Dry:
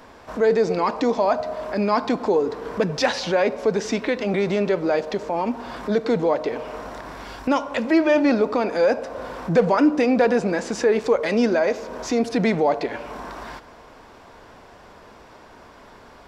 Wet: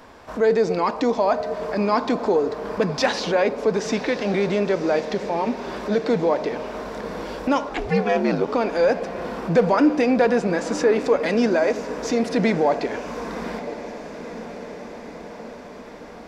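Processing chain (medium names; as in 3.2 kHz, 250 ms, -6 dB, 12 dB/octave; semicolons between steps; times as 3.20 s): 7.69–8.46 s: ring modulator 260 Hz -> 43 Hz; echo that smears into a reverb 1041 ms, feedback 65%, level -13 dB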